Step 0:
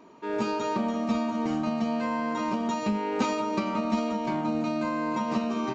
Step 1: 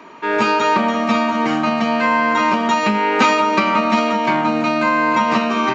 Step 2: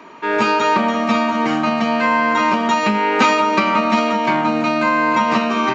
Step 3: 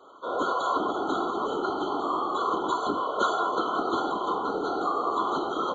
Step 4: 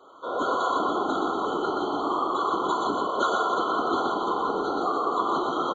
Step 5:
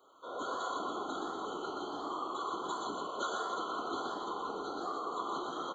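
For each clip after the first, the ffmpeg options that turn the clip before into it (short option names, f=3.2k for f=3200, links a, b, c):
-filter_complex "[0:a]equalizer=f=1.9k:w=0.53:g=13,acrossover=split=100|740|2100[a][b][c][d];[a]alimiter=level_in=29dB:limit=-24dB:level=0:latency=1:release=496,volume=-29dB[e];[e][b][c][d]amix=inputs=4:normalize=0,volume=7dB"
-af anull
-af "afreqshift=120,afftfilt=real='hypot(re,im)*cos(2*PI*random(0))':imag='hypot(re,im)*sin(2*PI*random(1))':win_size=512:overlap=0.75,afftfilt=real='re*eq(mod(floor(b*sr/1024/1500),2),0)':imag='im*eq(mod(floor(b*sr/1024/1500),2),0)':win_size=1024:overlap=0.75,volume=-4.5dB"
-af "aecho=1:1:122.4|288.6:0.631|0.355"
-af "flanger=delay=9.2:depth=5.4:regen=86:speed=1.4:shape=sinusoidal,crystalizer=i=2.5:c=0,volume=-8.5dB"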